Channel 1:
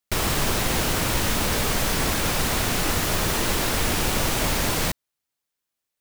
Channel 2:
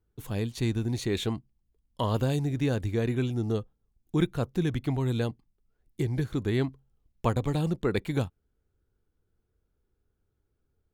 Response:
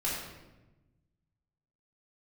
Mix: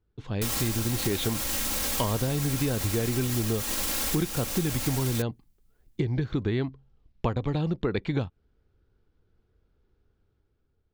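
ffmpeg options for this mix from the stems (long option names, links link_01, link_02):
-filter_complex "[0:a]highshelf=frequency=3900:gain=11,aecho=1:1:3.7:0.65,alimiter=limit=-8.5dB:level=0:latency=1:release=25,adelay=300,volume=-9dB[link_01];[1:a]lowpass=frequency=5000:width=0.5412,lowpass=frequency=5000:width=1.3066,dynaudnorm=framelen=140:gausssize=11:maxgain=6dB,volume=1.5dB[link_02];[link_01][link_02]amix=inputs=2:normalize=0,acompressor=threshold=-24dB:ratio=5"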